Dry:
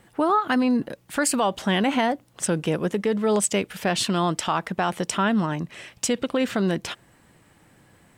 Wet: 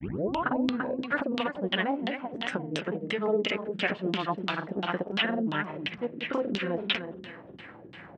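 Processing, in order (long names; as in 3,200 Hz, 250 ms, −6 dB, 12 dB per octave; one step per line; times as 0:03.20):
turntable start at the beginning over 0.44 s
high-shelf EQ 2,200 Hz −10 dB
downward compressor 4 to 1, threshold −39 dBFS, peak gain reduction 18 dB
on a send: repeating echo 296 ms, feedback 34%, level −7.5 dB
on the sum: granular cloud
auto-filter low-pass saw down 2.9 Hz 240–3,600 Hz
meter weighting curve D
level +9 dB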